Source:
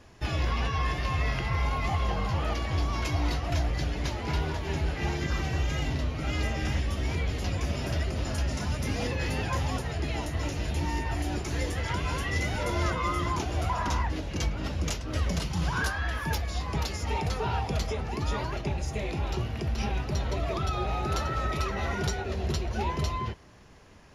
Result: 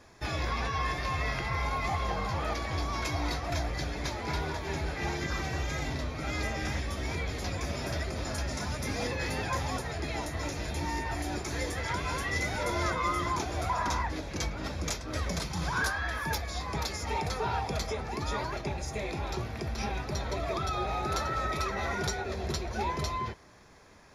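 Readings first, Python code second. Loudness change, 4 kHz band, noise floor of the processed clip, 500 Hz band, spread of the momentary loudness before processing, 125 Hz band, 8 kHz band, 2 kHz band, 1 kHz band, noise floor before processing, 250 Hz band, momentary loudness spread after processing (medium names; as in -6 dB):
-2.5 dB, -1.0 dB, -40 dBFS, -1.0 dB, 3 LU, -5.5 dB, +1.0 dB, +0.5 dB, +0.5 dB, -36 dBFS, -3.0 dB, 4 LU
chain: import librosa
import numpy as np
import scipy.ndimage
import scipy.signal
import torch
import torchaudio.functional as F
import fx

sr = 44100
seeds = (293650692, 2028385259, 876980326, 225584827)

y = fx.low_shelf(x, sr, hz=280.0, db=-7.5)
y = fx.notch(y, sr, hz=2900.0, q=5.1)
y = y * librosa.db_to_amplitude(1.0)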